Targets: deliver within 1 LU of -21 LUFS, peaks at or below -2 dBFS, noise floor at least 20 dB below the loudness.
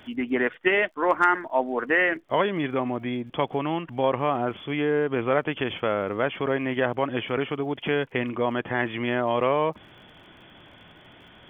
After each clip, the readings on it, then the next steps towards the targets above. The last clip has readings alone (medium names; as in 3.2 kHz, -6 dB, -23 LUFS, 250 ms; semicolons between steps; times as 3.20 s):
tick rate 45 per s; loudness -25.5 LUFS; peak level -7.0 dBFS; loudness target -21.0 LUFS
-> de-click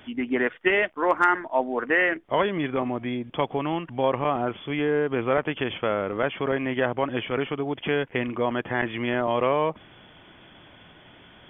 tick rate 0 per s; loudness -25.5 LUFS; peak level -8.0 dBFS; loudness target -21.0 LUFS
-> trim +4.5 dB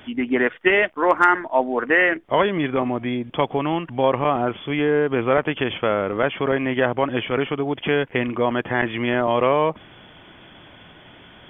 loudness -21.0 LUFS; peak level -3.5 dBFS; noise floor -47 dBFS